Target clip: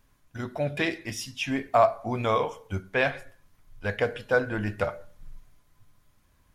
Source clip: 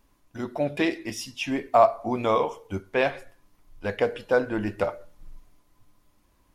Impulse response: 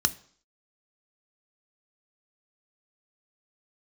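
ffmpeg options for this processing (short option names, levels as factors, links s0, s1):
-filter_complex "[0:a]asplit=2[s0][s1];[s1]lowshelf=f=480:g=-7.5[s2];[1:a]atrim=start_sample=2205,lowpass=2100,lowshelf=f=370:g=9[s3];[s2][s3]afir=irnorm=-1:irlink=0,volume=0.15[s4];[s0][s4]amix=inputs=2:normalize=0"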